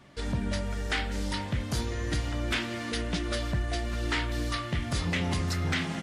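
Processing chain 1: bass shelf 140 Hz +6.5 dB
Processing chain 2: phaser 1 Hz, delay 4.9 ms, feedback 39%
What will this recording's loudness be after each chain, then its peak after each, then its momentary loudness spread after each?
-28.5 LUFS, -30.0 LUFS; -15.0 dBFS, -17.0 dBFS; 3 LU, 3 LU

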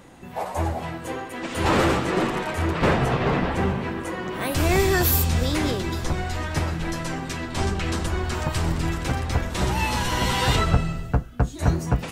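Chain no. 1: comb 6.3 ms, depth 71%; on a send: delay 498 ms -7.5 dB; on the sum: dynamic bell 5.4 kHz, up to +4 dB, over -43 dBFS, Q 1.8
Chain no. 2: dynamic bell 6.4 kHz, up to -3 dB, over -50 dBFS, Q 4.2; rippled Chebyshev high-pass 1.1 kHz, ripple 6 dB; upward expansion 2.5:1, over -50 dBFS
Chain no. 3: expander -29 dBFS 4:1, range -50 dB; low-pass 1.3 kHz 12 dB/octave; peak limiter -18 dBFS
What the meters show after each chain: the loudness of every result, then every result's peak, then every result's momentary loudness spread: -22.0 LUFS, -36.5 LUFS, -28.5 LUFS; -4.5 dBFS, -16.0 dBFS, -18.0 dBFS; 8 LU, 22 LU, 6 LU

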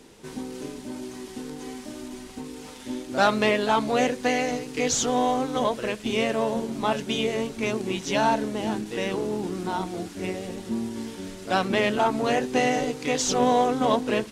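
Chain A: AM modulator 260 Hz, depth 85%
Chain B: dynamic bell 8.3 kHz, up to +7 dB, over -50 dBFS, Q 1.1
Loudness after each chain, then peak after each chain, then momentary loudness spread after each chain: -29.5 LUFS, -25.0 LUFS; -9.0 dBFS, -7.5 dBFS; 15 LU, 16 LU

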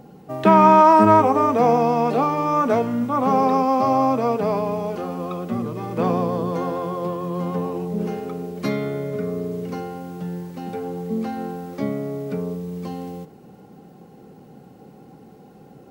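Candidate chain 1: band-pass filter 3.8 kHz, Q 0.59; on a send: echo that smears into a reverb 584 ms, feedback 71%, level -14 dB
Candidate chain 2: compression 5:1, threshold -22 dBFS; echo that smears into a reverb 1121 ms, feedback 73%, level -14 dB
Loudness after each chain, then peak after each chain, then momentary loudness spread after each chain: -28.5 LUFS, -27.0 LUFS; -11.5 dBFS, -11.5 dBFS; 22 LU, 15 LU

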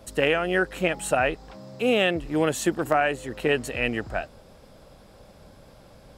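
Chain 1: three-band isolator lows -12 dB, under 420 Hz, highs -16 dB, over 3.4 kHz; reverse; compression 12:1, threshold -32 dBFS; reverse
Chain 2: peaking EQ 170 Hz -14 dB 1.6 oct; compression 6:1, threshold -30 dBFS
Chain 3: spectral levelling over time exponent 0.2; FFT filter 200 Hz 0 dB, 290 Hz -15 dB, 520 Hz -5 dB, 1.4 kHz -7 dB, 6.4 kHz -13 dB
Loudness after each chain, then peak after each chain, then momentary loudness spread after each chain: -37.5 LUFS, -34.5 LUFS, -23.5 LUFS; -20.5 dBFS, -16.0 dBFS, -4.5 dBFS; 20 LU, 21 LU, 4 LU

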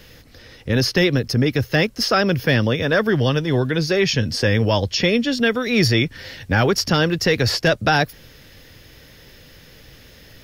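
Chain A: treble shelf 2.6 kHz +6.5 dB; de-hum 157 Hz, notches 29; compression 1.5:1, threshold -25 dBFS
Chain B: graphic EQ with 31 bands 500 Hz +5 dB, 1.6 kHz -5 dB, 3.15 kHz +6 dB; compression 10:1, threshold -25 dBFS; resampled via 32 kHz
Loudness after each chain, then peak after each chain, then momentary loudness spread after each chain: -21.5 LUFS, -29.0 LUFS; -7.5 dBFS, -13.5 dBFS; 5 LU, 16 LU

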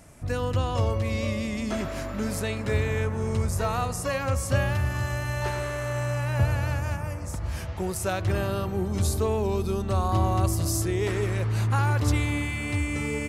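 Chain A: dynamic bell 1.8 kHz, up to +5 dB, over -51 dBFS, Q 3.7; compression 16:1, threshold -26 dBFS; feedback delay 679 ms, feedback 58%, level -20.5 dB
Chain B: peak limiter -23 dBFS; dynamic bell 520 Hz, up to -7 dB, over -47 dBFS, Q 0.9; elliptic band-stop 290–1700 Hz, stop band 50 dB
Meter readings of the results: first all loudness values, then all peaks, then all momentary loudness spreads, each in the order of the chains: -31.0 LUFS, -34.5 LUFS; -17.5 dBFS, -21.5 dBFS; 2 LU, 3 LU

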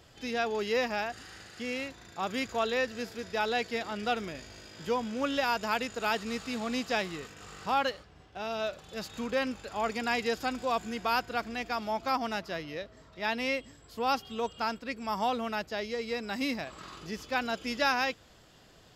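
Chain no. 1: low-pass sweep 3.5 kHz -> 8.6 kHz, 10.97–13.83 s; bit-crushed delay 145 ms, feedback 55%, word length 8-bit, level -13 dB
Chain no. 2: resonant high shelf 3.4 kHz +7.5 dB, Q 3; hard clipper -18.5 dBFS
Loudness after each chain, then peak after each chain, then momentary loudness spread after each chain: -31.0 LUFS, -30.5 LUFS; -12.5 dBFS, -18.5 dBFS; 12 LU, 10 LU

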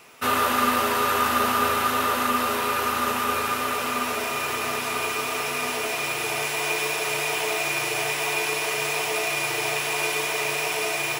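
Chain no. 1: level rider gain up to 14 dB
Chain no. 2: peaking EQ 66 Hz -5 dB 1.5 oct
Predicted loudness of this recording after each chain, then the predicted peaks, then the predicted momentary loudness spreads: -13.5 LUFS, -24.0 LUFS; -1.5 dBFS, -9.0 dBFS; 2 LU, 5 LU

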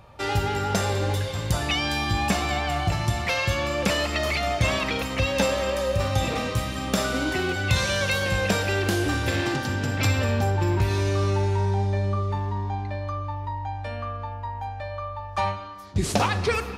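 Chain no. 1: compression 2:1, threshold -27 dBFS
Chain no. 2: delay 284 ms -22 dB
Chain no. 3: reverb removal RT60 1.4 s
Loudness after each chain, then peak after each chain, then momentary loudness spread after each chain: -29.0 LUFS, -25.0 LUFS, -28.0 LUFS; -10.0 dBFS, -7.5 dBFS, -8.0 dBFS; 5 LU, 9 LU, 11 LU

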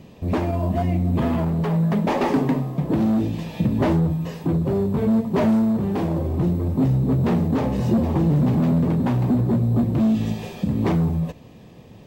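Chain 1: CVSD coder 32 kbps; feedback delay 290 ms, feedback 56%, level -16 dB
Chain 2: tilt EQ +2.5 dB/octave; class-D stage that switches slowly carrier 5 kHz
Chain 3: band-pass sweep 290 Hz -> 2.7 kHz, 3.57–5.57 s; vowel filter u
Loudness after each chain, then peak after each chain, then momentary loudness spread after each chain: -21.5 LUFS, -26.0 LUFS, -35.5 LUFS; -9.0 dBFS, -12.0 dBFS, -16.5 dBFS; 6 LU, 5 LU, 22 LU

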